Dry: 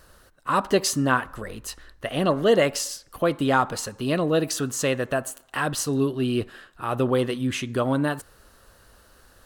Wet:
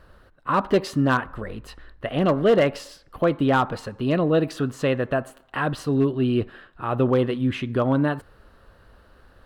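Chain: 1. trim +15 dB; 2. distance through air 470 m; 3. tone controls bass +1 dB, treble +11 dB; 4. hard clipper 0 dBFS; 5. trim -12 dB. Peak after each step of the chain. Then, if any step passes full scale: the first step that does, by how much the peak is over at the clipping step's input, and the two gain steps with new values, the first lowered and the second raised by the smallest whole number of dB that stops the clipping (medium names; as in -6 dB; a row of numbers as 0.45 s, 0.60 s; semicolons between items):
+9.0 dBFS, +6.0 dBFS, +6.0 dBFS, 0.0 dBFS, -12.0 dBFS; step 1, 6.0 dB; step 1 +9 dB, step 5 -6 dB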